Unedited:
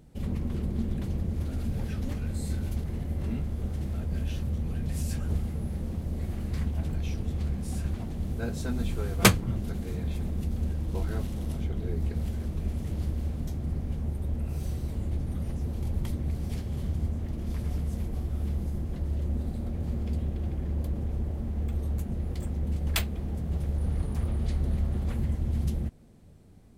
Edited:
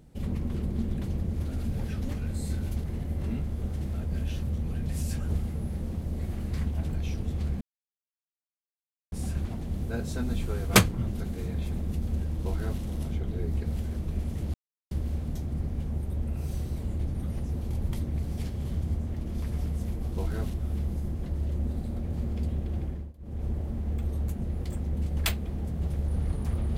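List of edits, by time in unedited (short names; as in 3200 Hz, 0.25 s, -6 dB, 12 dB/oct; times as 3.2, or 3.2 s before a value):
7.61 insert silence 1.51 s
10.89–11.31 copy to 18.24
13.03 insert silence 0.37 s
20.55–21.16 dip -22 dB, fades 0.28 s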